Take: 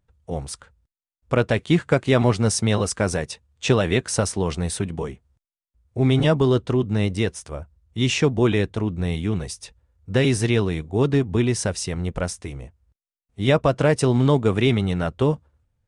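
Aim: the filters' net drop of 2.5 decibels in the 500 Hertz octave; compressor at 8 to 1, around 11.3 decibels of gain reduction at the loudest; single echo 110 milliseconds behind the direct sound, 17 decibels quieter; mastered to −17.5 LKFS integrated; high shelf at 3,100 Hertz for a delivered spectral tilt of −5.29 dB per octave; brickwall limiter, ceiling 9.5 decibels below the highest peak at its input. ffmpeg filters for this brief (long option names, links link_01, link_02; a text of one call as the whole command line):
ffmpeg -i in.wav -af "equalizer=frequency=500:width_type=o:gain=-3,highshelf=frequency=3100:gain=-4.5,acompressor=threshold=-26dB:ratio=8,alimiter=level_in=1dB:limit=-24dB:level=0:latency=1,volume=-1dB,aecho=1:1:110:0.141,volume=18dB" out.wav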